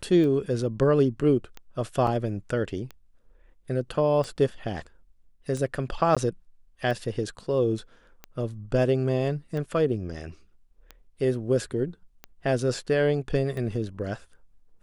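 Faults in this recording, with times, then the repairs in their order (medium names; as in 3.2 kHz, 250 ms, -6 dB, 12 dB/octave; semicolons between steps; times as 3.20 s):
tick 45 rpm -23 dBFS
2.07 s: dropout 3.1 ms
6.15–6.17 s: dropout 16 ms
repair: de-click; interpolate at 2.07 s, 3.1 ms; interpolate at 6.15 s, 16 ms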